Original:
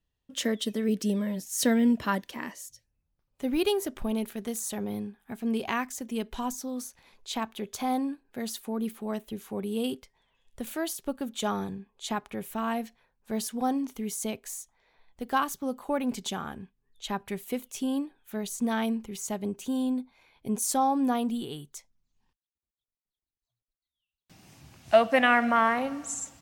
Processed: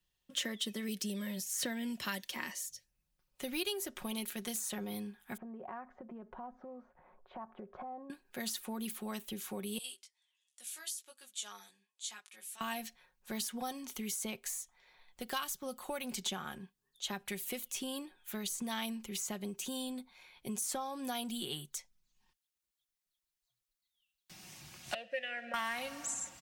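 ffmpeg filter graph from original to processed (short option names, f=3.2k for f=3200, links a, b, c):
-filter_complex "[0:a]asettb=1/sr,asplit=3[a][b][c];[a]atrim=end=5.374[d];[b]atrim=start=5.37:end=8.1,asetpts=PTS-STARTPTS,afade=t=in:d=0.004:c=qsin,afade=t=out:st=2.726:d=0.004:c=qsin,lowpass=f=1.3k:w=0.5412,lowpass=f=1.3k:w=1.3066,equalizer=f=630:w=2:g=7,acompressor=threshold=-40dB:ratio=6:attack=3.2:release=140:knee=1:detection=peak[e];[c]atrim=start=8.096[f];[d][e]acrossfade=d=0.004:c1=hsin:c2=qsin[g];[g][f]acrossfade=d=0.004:c1=qsin:c2=hsin,asettb=1/sr,asplit=3[h][i][j];[h]atrim=end=9.784[k];[i]atrim=start=9.78:end=12.61,asetpts=PTS-STARTPTS,afade=t=in:d=0.004:c=qsin,afade=t=out:st=2.826:d=0.004:c=qsin,lowpass=f=10k:w=0.5412,lowpass=f=10k:w=1.3066,aderivative,flanger=delay=15:depth=4.7:speed=1.4[l];[j]atrim=start=12.606[m];[k][l]acrossfade=d=0.004:c1=hsin:c2=qsin[n];[n][m]acrossfade=d=0.004:c1=qsin:c2=hsin,asettb=1/sr,asplit=3[o][p][q];[o]atrim=end=16.584[r];[p]atrim=start=16.58:end=17.13,asetpts=PTS-STARTPTS,afade=t=in:d=0.004:c=qsin,afade=t=out:st=0.546:d=0.004:c=qsin,highpass=f=150:p=1,equalizer=f=2.3k:t=o:w=0.67:g=-7[s];[q]atrim=start=17.126[t];[r][s]acrossfade=d=0.004:c1=hsin:c2=qsin[u];[u][t]acrossfade=d=0.004:c1=qsin:c2=hsin,asettb=1/sr,asplit=3[v][w][x];[v]atrim=end=24.944[y];[w]atrim=start=24.94:end=25.54,asetpts=PTS-STARTPTS,afade=t=in:d=0.004:c=qsin,afade=t=out:st=0.596:d=0.004:c=qsin,bass=f=250:g=10,treble=f=4k:g=1,aeval=exprs='sgn(val(0))*max(abs(val(0))-0.00596,0)':c=same,asplit=3[z][aa][ab];[z]bandpass=f=530:t=q:w=8,volume=0dB[ac];[aa]bandpass=f=1.84k:t=q:w=8,volume=-6dB[ad];[ab]bandpass=f=2.48k:t=q:w=8,volume=-9dB[ae];[ac][ad][ae]amix=inputs=3:normalize=0[af];[x]atrim=start=25.536[ag];[y][af]acrossfade=d=0.004:c1=hsin:c2=qsin[ah];[ah][ag]acrossfade=d=0.004:c1=qsin:c2=hsin,tiltshelf=f=1.2k:g=-5.5,aecho=1:1:5.5:0.46,acrossover=split=120|2700[ai][aj][ak];[ai]acompressor=threshold=-60dB:ratio=4[al];[aj]acompressor=threshold=-39dB:ratio=4[am];[ak]acompressor=threshold=-39dB:ratio=4[an];[al][am][an]amix=inputs=3:normalize=0"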